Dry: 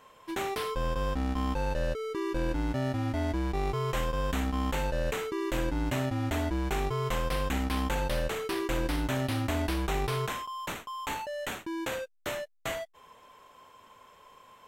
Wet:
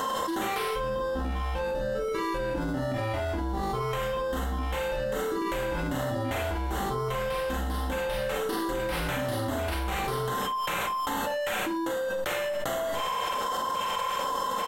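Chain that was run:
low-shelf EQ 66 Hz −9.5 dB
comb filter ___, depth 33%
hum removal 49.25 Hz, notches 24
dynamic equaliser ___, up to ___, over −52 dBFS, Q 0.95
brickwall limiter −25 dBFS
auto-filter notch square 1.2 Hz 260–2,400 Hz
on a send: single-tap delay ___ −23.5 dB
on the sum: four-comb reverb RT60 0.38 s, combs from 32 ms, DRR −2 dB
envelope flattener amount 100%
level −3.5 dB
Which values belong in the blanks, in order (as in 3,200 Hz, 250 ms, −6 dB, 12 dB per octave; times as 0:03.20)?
3.8 ms, 5,900 Hz, −5 dB, 79 ms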